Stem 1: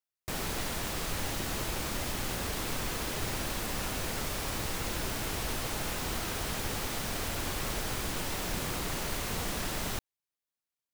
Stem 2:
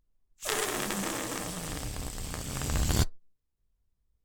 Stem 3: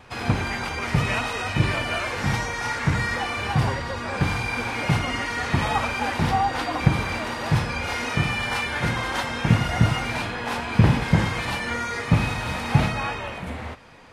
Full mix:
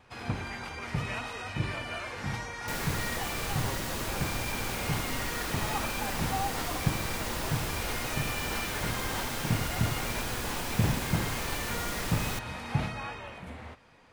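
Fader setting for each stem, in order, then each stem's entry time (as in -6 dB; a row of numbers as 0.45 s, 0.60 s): -0.5 dB, mute, -10.5 dB; 2.40 s, mute, 0.00 s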